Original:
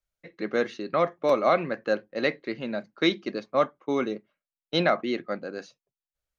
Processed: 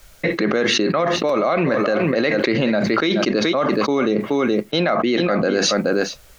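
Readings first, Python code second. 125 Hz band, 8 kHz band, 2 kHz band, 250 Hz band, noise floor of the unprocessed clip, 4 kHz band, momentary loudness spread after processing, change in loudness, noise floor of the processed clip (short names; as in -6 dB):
+13.0 dB, n/a, +9.5 dB, +12.0 dB, under -85 dBFS, +11.5 dB, 2 LU, +8.5 dB, -46 dBFS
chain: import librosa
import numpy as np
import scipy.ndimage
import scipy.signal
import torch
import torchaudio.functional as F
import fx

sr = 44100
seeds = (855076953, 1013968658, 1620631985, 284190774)

p1 = x + fx.echo_single(x, sr, ms=425, db=-18.5, dry=0)
y = fx.env_flatten(p1, sr, amount_pct=100)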